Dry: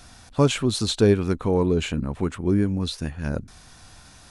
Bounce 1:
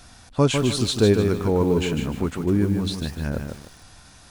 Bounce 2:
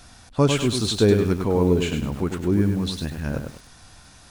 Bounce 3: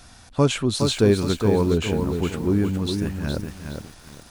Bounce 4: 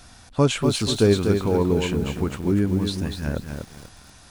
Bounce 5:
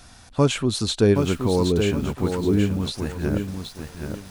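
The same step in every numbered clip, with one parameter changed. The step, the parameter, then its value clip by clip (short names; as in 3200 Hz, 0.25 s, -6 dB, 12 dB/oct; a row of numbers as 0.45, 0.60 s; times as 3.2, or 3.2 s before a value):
lo-fi delay, time: 0.151, 0.1, 0.414, 0.243, 0.773 s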